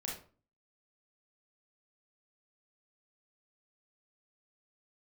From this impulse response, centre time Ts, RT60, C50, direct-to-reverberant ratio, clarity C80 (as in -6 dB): 37 ms, 0.40 s, 4.0 dB, -3.0 dB, 10.5 dB